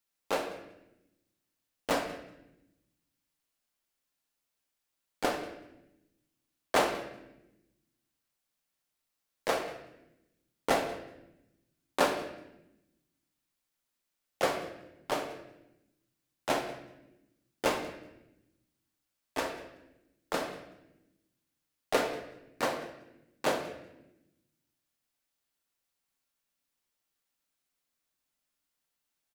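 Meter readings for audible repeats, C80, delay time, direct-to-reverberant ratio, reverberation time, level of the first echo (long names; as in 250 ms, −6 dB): 1, 9.5 dB, 188 ms, 3.5 dB, 0.95 s, −20.0 dB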